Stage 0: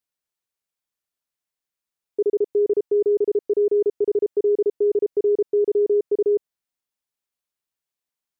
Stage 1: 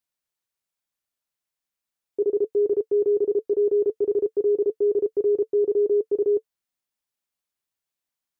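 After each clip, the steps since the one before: band-stop 440 Hz, Q 12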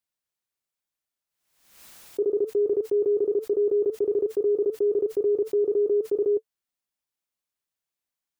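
swell ahead of each attack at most 73 dB/s; trim -2 dB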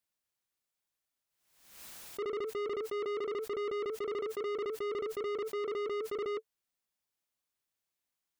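saturation -34 dBFS, distortion -6 dB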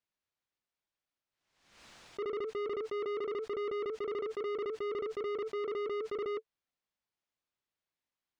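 distance through air 120 m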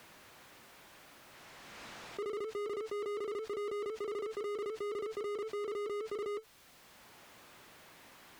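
jump at every zero crossing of -55.5 dBFS; Chebyshev shaper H 5 -22 dB, 6 -35 dB, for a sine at -33.5 dBFS; three bands compressed up and down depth 40%; trim -2.5 dB

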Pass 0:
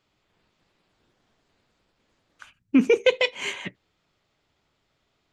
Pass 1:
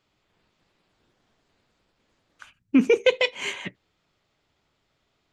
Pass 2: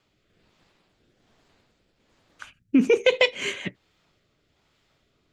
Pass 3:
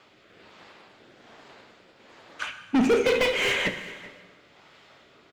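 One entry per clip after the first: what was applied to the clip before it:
no audible change
peak limiter -13.5 dBFS, peak gain reduction 6 dB; rotary cabinet horn 1.2 Hz; trim +6.5 dB
overdrive pedal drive 33 dB, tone 1.8 kHz, clips at -5.5 dBFS; delay 387 ms -20 dB; plate-style reverb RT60 1.5 s, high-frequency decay 0.85×, DRR 7.5 dB; trim -8 dB

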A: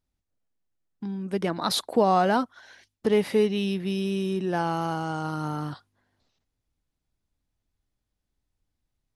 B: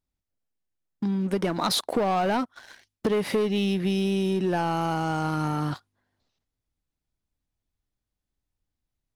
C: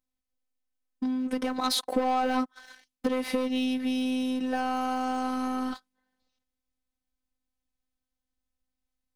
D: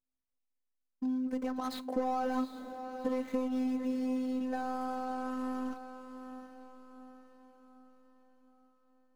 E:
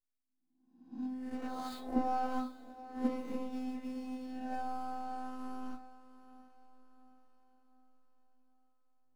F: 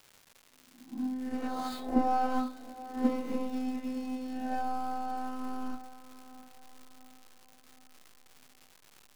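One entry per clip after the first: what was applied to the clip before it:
waveshaping leveller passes 2; compression, threshold -22 dBFS, peak gain reduction 8.5 dB
robot voice 256 Hz
median filter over 15 samples; feedback comb 130 Hz, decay 0.28 s, harmonics all, mix 50%; echo that smears into a reverb 745 ms, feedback 47%, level -10 dB; trim -2 dB
reverse spectral sustain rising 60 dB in 0.84 s; reverberation RT60 0.40 s, pre-delay 3 ms, DRR 0 dB; upward expansion 1.5:1, over -41 dBFS; trim -4.5 dB
crackle 330 per s -49 dBFS; trim +5.5 dB

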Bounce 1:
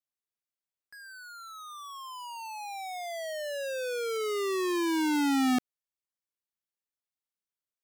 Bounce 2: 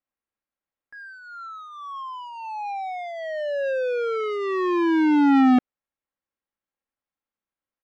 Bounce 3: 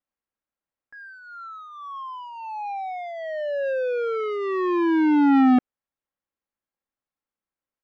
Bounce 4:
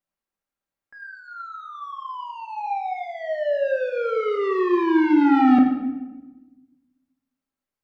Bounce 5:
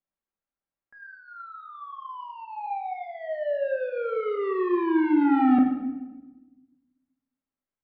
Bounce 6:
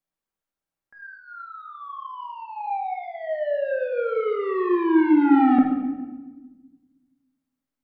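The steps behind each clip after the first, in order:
low-pass 1.9 kHz 12 dB/octave; comb 3.7 ms, depth 34%; trim +7.5 dB
treble shelf 4 kHz -9.5 dB
reverberation RT60 1.1 s, pre-delay 5 ms, DRR 1.5 dB
distance through air 320 m; trim -3.5 dB
simulated room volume 780 m³, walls mixed, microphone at 0.57 m; trim +2.5 dB

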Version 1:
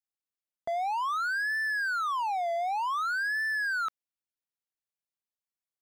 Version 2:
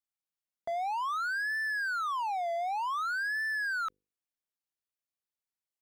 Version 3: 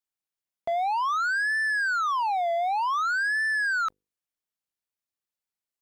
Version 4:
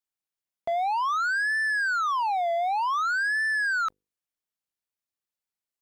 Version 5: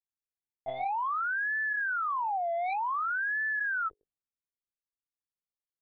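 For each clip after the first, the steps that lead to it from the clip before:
hum notches 50/100/150/200/250/300/350/400/450/500 Hz; trim -2.5 dB
waveshaping leveller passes 2; trim +4.5 dB
no audible change
level-controlled noise filter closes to 360 Hz, open at -27.5 dBFS; monotone LPC vocoder at 8 kHz 130 Hz; trim -5 dB

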